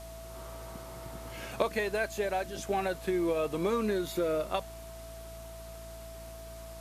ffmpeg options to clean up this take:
-af "adeclick=t=4,bandreject=f=56.6:t=h:w=4,bandreject=f=113.2:t=h:w=4,bandreject=f=169.8:t=h:w=4,bandreject=f=226.4:t=h:w=4,bandreject=f=283:t=h:w=4,bandreject=f=339.6:t=h:w=4,bandreject=f=660:w=30,afwtdn=0.0022"

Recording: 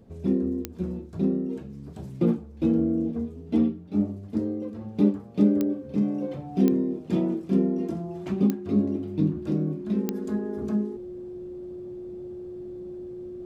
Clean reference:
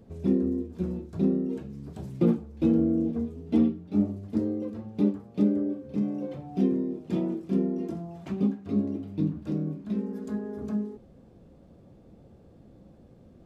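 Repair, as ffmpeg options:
-af "adeclick=t=4,bandreject=f=360:w=30,asetnsamples=n=441:p=0,asendcmd='4.81 volume volume -3.5dB',volume=1"

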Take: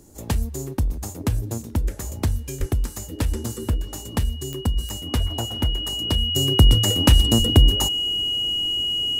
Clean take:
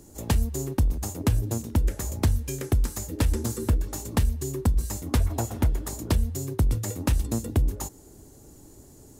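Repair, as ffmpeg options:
-filter_complex "[0:a]adeclick=t=4,bandreject=f=2900:w=30,asplit=3[s0][s1][s2];[s0]afade=t=out:st=2.59:d=0.02[s3];[s1]highpass=f=140:w=0.5412,highpass=f=140:w=1.3066,afade=t=in:st=2.59:d=0.02,afade=t=out:st=2.71:d=0.02[s4];[s2]afade=t=in:st=2.71:d=0.02[s5];[s3][s4][s5]amix=inputs=3:normalize=0,asplit=3[s6][s7][s8];[s6]afade=t=out:st=7.38:d=0.02[s9];[s7]highpass=f=140:w=0.5412,highpass=f=140:w=1.3066,afade=t=in:st=7.38:d=0.02,afade=t=out:st=7.5:d=0.02[s10];[s8]afade=t=in:st=7.5:d=0.02[s11];[s9][s10][s11]amix=inputs=3:normalize=0,asetnsamples=n=441:p=0,asendcmd='6.36 volume volume -9dB',volume=1"

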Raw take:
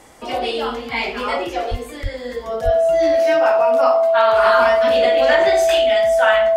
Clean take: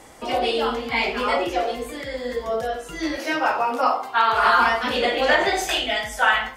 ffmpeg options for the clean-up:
-filter_complex "[0:a]bandreject=f=660:w=30,asplit=3[s0][s1][s2];[s0]afade=t=out:st=1.7:d=0.02[s3];[s1]highpass=f=140:w=0.5412,highpass=f=140:w=1.3066,afade=t=in:st=1.7:d=0.02,afade=t=out:st=1.82:d=0.02[s4];[s2]afade=t=in:st=1.82:d=0.02[s5];[s3][s4][s5]amix=inputs=3:normalize=0,asplit=3[s6][s7][s8];[s6]afade=t=out:st=2.02:d=0.02[s9];[s7]highpass=f=140:w=0.5412,highpass=f=140:w=1.3066,afade=t=in:st=2.02:d=0.02,afade=t=out:st=2.14:d=0.02[s10];[s8]afade=t=in:st=2.14:d=0.02[s11];[s9][s10][s11]amix=inputs=3:normalize=0,asplit=3[s12][s13][s14];[s12]afade=t=out:st=2.64:d=0.02[s15];[s13]highpass=f=140:w=0.5412,highpass=f=140:w=1.3066,afade=t=in:st=2.64:d=0.02,afade=t=out:st=2.76:d=0.02[s16];[s14]afade=t=in:st=2.76:d=0.02[s17];[s15][s16][s17]amix=inputs=3:normalize=0"

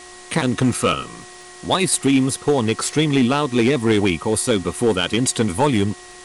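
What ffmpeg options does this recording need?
-af "adeclick=t=4,bandreject=f=361.5:t=h:w=4,bandreject=f=723:t=h:w=4,bandreject=f=1084.5:t=h:w=4,bandreject=f=1900:w=30,afftdn=nr=24:nf=-40"

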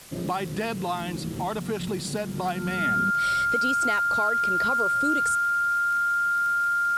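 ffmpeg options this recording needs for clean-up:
-af "adeclick=t=4,bandreject=f=1400:w=30,afwtdn=0.005"

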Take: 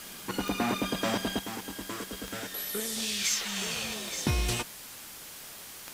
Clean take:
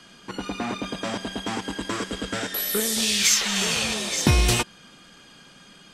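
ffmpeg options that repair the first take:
-af "adeclick=t=4,afwtdn=0.0063,asetnsamples=n=441:p=0,asendcmd='1.39 volume volume 9.5dB',volume=1"

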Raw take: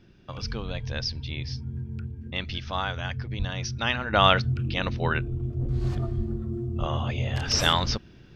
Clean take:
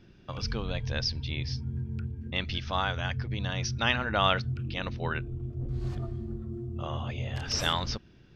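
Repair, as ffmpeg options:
-filter_complex "[0:a]asplit=3[s0][s1][s2];[s0]afade=t=out:st=3.38:d=0.02[s3];[s1]highpass=f=140:w=0.5412,highpass=f=140:w=1.3066,afade=t=in:st=3.38:d=0.02,afade=t=out:st=3.5:d=0.02[s4];[s2]afade=t=in:st=3.5:d=0.02[s5];[s3][s4][s5]amix=inputs=3:normalize=0,asplit=3[s6][s7][s8];[s6]afade=t=out:st=6.16:d=0.02[s9];[s7]highpass=f=140:w=0.5412,highpass=f=140:w=1.3066,afade=t=in:st=6.16:d=0.02,afade=t=out:st=6.28:d=0.02[s10];[s8]afade=t=in:st=6.28:d=0.02[s11];[s9][s10][s11]amix=inputs=3:normalize=0,asplit=3[s12][s13][s14];[s12]afade=t=out:st=6.79:d=0.02[s15];[s13]highpass=f=140:w=0.5412,highpass=f=140:w=1.3066,afade=t=in:st=6.79:d=0.02,afade=t=out:st=6.91:d=0.02[s16];[s14]afade=t=in:st=6.91:d=0.02[s17];[s15][s16][s17]amix=inputs=3:normalize=0,asetnsamples=n=441:p=0,asendcmd='4.13 volume volume -6dB',volume=1"

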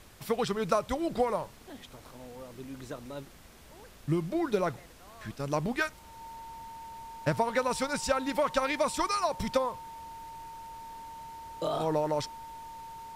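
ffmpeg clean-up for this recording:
-af "bandreject=f=910:w=30,afftdn=nr=25:nf=-52"

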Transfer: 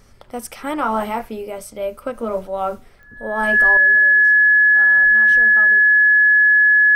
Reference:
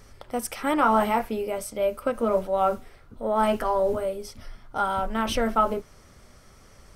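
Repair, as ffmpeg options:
-af "adeclick=t=4,bandreject=f=46.1:t=h:w=4,bandreject=f=92.2:t=h:w=4,bandreject=f=138.3:t=h:w=4,bandreject=f=184.4:t=h:w=4,bandreject=f=230.5:t=h:w=4,bandreject=f=1700:w=30,asetnsamples=n=441:p=0,asendcmd='3.77 volume volume 12dB',volume=1"

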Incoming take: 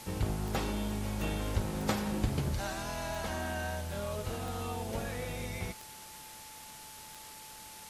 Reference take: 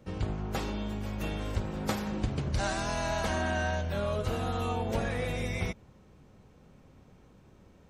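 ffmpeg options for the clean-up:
-af "adeclick=t=4,bandreject=f=870:w=30,afwtdn=0.004,asetnsamples=n=441:p=0,asendcmd='2.54 volume volume 6dB',volume=1"

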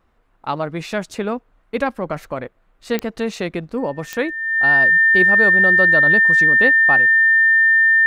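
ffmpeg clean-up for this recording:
-af "adeclick=t=4,bandreject=f=1800:w=30"

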